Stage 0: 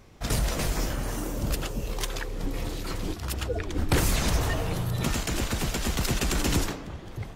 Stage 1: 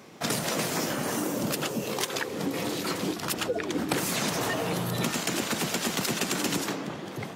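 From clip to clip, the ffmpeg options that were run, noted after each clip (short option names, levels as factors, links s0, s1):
-af "highpass=f=160:w=0.5412,highpass=f=160:w=1.3066,acompressor=threshold=0.0251:ratio=6,volume=2.24"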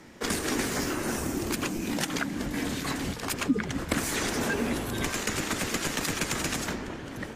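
-af "equalizer=f=250:t=o:w=1:g=-9,equalizer=f=500:t=o:w=1:g=12,equalizer=f=2000:t=o:w=1:g=7,equalizer=f=8000:t=o:w=1:g=5,afreqshift=-230,volume=0.562"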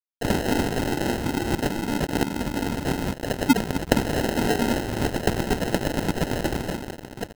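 -af "acrusher=samples=38:mix=1:aa=0.000001,aeval=exprs='sgn(val(0))*max(abs(val(0))-0.0119,0)':c=same,volume=2.51"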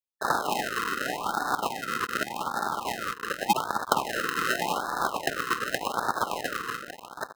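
-af "aeval=exprs='val(0)*sin(2*PI*1100*n/s)':c=same,afftfilt=real='re*(1-between(b*sr/1024,700*pow(2600/700,0.5+0.5*sin(2*PI*0.86*pts/sr))/1.41,700*pow(2600/700,0.5+0.5*sin(2*PI*0.86*pts/sr))*1.41))':imag='im*(1-between(b*sr/1024,700*pow(2600/700,0.5+0.5*sin(2*PI*0.86*pts/sr))/1.41,700*pow(2600/700,0.5+0.5*sin(2*PI*0.86*pts/sr))*1.41))':win_size=1024:overlap=0.75"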